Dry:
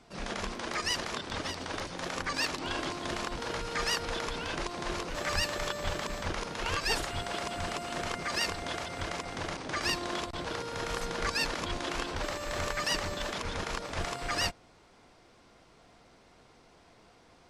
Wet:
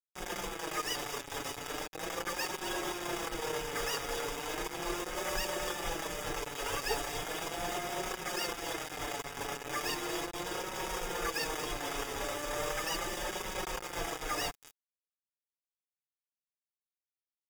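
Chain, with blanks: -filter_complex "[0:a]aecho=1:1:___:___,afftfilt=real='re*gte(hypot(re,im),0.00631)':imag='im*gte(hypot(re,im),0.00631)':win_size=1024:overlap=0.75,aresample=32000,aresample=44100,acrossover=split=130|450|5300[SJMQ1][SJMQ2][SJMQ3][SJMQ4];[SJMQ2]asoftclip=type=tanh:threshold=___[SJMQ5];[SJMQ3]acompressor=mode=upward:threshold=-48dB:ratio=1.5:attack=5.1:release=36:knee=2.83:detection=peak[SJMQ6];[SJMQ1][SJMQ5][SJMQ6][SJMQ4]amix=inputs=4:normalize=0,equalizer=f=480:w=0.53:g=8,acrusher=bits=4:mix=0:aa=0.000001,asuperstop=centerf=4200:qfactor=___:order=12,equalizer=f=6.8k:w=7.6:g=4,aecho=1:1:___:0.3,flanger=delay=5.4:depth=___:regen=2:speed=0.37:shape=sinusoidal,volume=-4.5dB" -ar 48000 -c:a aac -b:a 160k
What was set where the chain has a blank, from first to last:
232, 0.237, -40dB, 7.3, 2.4, 1.7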